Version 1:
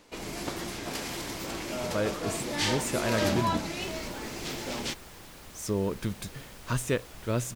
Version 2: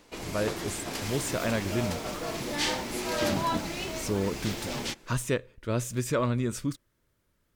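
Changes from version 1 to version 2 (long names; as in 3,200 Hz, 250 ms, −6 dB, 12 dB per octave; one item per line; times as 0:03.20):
speech: entry −1.60 s
second sound: entry −2.80 s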